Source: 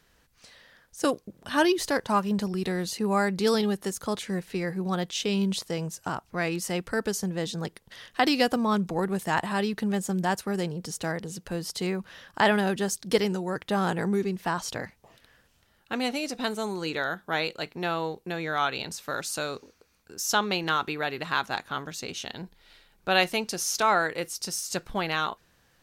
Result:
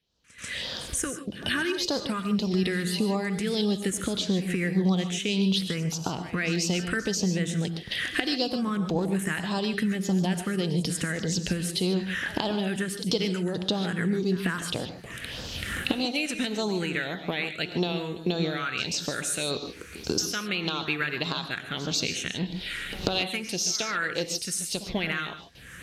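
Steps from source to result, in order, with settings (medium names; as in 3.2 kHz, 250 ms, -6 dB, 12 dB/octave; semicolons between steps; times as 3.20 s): recorder AGC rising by 27 dB/s; high-pass 43 Hz; gate with hold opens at -44 dBFS; Bessel low-pass 7.7 kHz, order 4; treble shelf 2.3 kHz +9 dB; compression 2.5:1, threshold -32 dBFS, peak gain reduction 15 dB; phase shifter stages 4, 1.7 Hz, lowest notch 730–2000 Hz; pre-echo 140 ms -17 dB; gated-style reverb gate 170 ms rising, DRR 9 dB; trim +5 dB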